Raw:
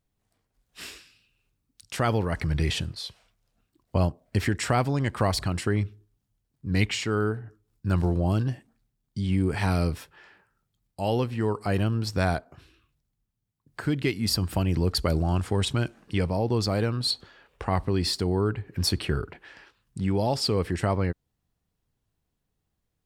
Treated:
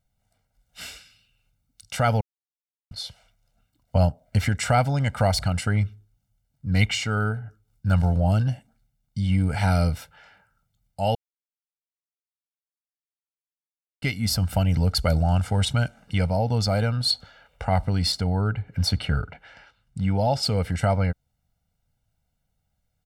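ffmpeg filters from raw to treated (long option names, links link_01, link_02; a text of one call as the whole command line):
ffmpeg -i in.wav -filter_complex "[0:a]asettb=1/sr,asplit=3[link_01][link_02][link_03];[link_01]atrim=end=18.124[link_04];[link_02]atrim=start=18.12:end=20.43,asetpts=PTS-STARTPTS,afade=type=in:duration=0.004:curve=qsin,afade=type=out:start_time=2.306:duration=0.004:curve=qsin,highshelf=frequency=6300:gain=-9[link_05];[link_03]atrim=start=20.426[link_06];[link_04][link_05]acrossfade=duration=0.004:curve1=hsin:curve2=qsin[link_07];[link_07][link_06]acrossfade=duration=0.004:curve1=qsin:curve2=hsin,asplit=5[link_08][link_09][link_10][link_11][link_12];[link_08]atrim=end=2.21,asetpts=PTS-STARTPTS,afade=type=out:start_time=2.206:duration=0.004:curve=hsin[link_13];[link_09]atrim=start=2.21:end=2.91,asetpts=PTS-STARTPTS,volume=0[link_14];[link_10]atrim=start=2.91:end=11.15,asetpts=PTS-STARTPTS,afade=type=in:duration=0.004:curve=hsin,afade=type=out:start_time=8.236:duration=0.004:curve=hsin[link_15];[link_11]atrim=start=11.15:end=14.02,asetpts=PTS-STARTPTS,volume=0[link_16];[link_12]atrim=start=14.02,asetpts=PTS-STARTPTS,afade=type=in:duration=0.004:curve=hsin[link_17];[link_13][link_14][link_15][link_16][link_17]concat=n=5:v=0:a=1,aecho=1:1:1.4:0.88" out.wav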